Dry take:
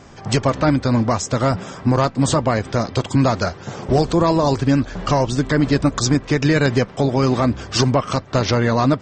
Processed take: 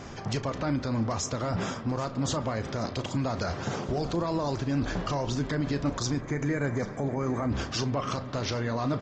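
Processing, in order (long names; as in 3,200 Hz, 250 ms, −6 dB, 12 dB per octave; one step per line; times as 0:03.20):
downsampling to 16,000 Hz
reversed playback
downward compressor 6 to 1, threshold −23 dBFS, peak gain reduction 11.5 dB
reversed playback
spring reverb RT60 3.2 s, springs 40 ms, chirp 25 ms, DRR 17.5 dB
gain on a spectral selection 0:06.20–0:07.50, 2,400–5,900 Hz −17 dB
brickwall limiter −22 dBFS, peak gain reduction 10 dB
double-tracking delay 35 ms −13 dB
on a send: tape delay 787 ms, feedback 65%, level −15.5 dB, low-pass 5,900 Hz
on the sum: level +1.5 dB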